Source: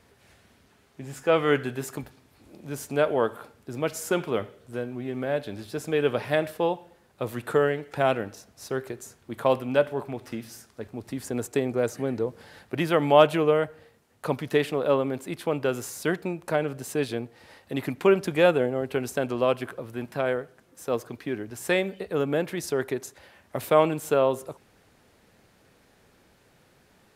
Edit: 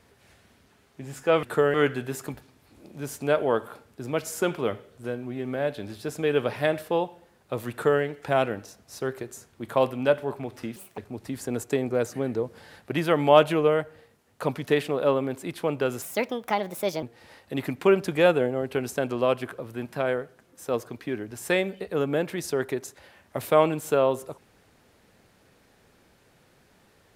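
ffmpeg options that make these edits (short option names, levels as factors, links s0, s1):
-filter_complex "[0:a]asplit=7[s0][s1][s2][s3][s4][s5][s6];[s0]atrim=end=1.432[s7];[s1]atrim=start=7.398:end=7.712[s8];[s2]atrim=start=1.428:end=10.454[s9];[s3]atrim=start=10.45:end=10.81,asetpts=PTS-STARTPTS,asetrate=72765,aresample=44100[s10];[s4]atrim=start=10.806:end=15.854[s11];[s5]atrim=start=15.85:end=17.22,asetpts=PTS-STARTPTS,asetrate=59976,aresample=44100,atrim=end_sample=44424,asetpts=PTS-STARTPTS[s12];[s6]atrim=start=17.216[s13];[s7][s8]acrossfade=d=0.004:c1=hsin:c2=hsin[s14];[s14][s9]acrossfade=d=0.004:c1=hsin:c2=hsin[s15];[s15][s10]acrossfade=d=0.004:c1=hsin:c2=hsin[s16];[s16][s11]acrossfade=d=0.004:c1=hsin:c2=hsin[s17];[s17][s12]acrossfade=d=0.004:c1=hsin:c2=hsin[s18];[s18][s13]acrossfade=d=0.004:c1=hsin:c2=hsin"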